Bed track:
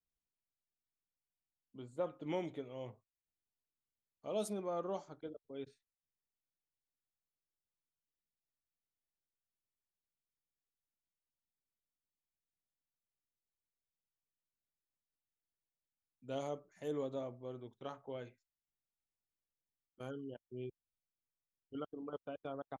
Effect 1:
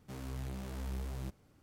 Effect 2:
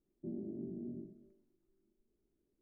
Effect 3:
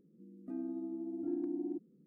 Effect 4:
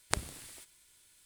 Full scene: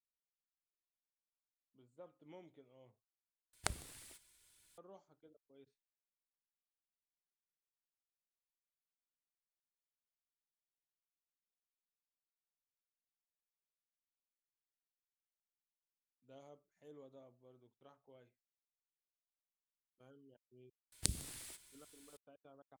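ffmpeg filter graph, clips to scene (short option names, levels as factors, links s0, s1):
-filter_complex "[4:a]asplit=2[s0][s1];[0:a]volume=0.126[s2];[s0]aphaser=in_gain=1:out_gain=1:delay=2.8:decay=0.25:speed=1.8:type=triangular[s3];[s1]acrossover=split=360|3000[s4][s5][s6];[s5]acompressor=threshold=0.00158:ratio=6:attack=3.2:release=140:knee=2.83:detection=peak[s7];[s4][s7][s6]amix=inputs=3:normalize=0[s8];[s2]asplit=2[s9][s10];[s9]atrim=end=3.534[s11];[s3]atrim=end=1.25,asetpts=PTS-STARTPTS,volume=0.447[s12];[s10]atrim=start=4.776[s13];[s8]atrim=end=1.25,asetpts=PTS-STARTPTS,volume=0.891,afade=t=in:d=0.004:c=hsin,afade=t=out:st=1.246:d=0.004:c=hsin,adelay=20920[s14];[s11][s12]acrossfade=d=0.004:c1=hsin:c2=hsin[s15];[s15][s13]acrossfade=d=0.004:c1=hsin:c2=hsin[s16];[s16][s14]amix=inputs=2:normalize=0"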